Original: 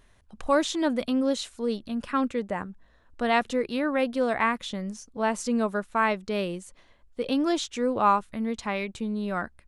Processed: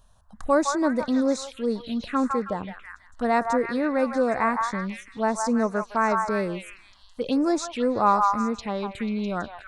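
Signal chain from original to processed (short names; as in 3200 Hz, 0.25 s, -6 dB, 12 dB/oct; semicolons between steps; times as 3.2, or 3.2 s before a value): delay with a stepping band-pass 0.163 s, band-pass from 1100 Hz, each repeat 0.7 oct, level -1 dB; envelope phaser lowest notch 340 Hz, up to 3100 Hz, full sweep at -23.5 dBFS; gain +2.5 dB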